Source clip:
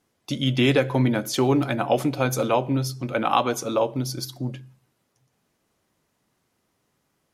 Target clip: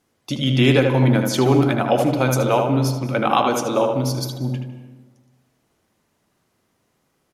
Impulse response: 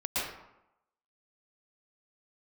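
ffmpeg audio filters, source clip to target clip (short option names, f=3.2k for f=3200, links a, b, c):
-filter_complex "[0:a]asplit=2[a][b];[b]adelay=77,lowpass=f=2.6k:p=1,volume=-4dB,asplit=2[c][d];[d]adelay=77,lowpass=f=2.6k:p=1,volume=0.48,asplit=2[e][f];[f]adelay=77,lowpass=f=2.6k:p=1,volume=0.48,asplit=2[g][h];[h]adelay=77,lowpass=f=2.6k:p=1,volume=0.48,asplit=2[i][j];[j]adelay=77,lowpass=f=2.6k:p=1,volume=0.48,asplit=2[k][l];[l]adelay=77,lowpass=f=2.6k:p=1,volume=0.48[m];[a][c][e][g][i][k][m]amix=inputs=7:normalize=0,asplit=2[n][o];[1:a]atrim=start_sample=2205,asetrate=26901,aresample=44100[p];[o][p]afir=irnorm=-1:irlink=0,volume=-24.5dB[q];[n][q]amix=inputs=2:normalize=0,volume=2dB"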